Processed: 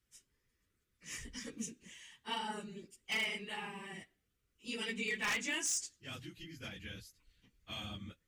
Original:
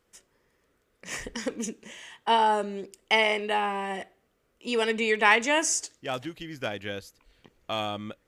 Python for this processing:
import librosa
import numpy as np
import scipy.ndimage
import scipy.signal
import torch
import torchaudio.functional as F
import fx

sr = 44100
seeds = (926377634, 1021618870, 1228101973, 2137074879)

y = fx.phase_scramble(x, sr, seeds[0], window_ms=50)
y = fx.tone_stack(y, sr, knobs='6-0-2')
y = 10.0 ** (-36.0 / 20.0) * (np.abs((y / 10.0 ** (-36.0 / 20.0) + 3.0) % 4.0 - 2.0) - 1.0)
y = y * 10.0 ** (7.5 / 20.0)